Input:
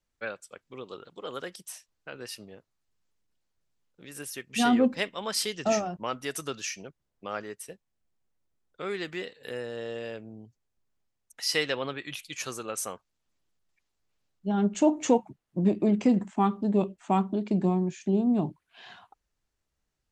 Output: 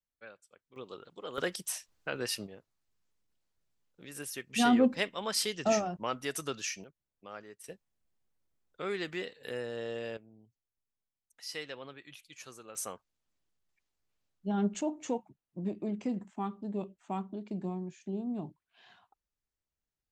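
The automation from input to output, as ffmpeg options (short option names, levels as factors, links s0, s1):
-af "asetnsamples=n=441:p=0,asendcmd='0.76 volume volume -4dB;1.38 volume volume 5.5dB;2.47 volume volume -2dB;6.84 volume volume -11dB;7.64 volume volume -2dB;10.17 volume volume -13.5dB;12.75 volume volume -4.5dB;14.81 volume volume -11.5dB',volume=0.178"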